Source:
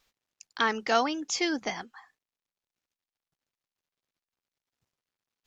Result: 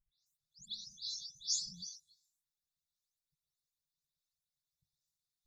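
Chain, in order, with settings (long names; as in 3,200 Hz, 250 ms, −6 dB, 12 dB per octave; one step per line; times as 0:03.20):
every frequency bin delayed by itself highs late, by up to 261 ms
speech leveller 2 s
linear-phase brick-wall band-stop 180–3,400 Hz
level −1 dB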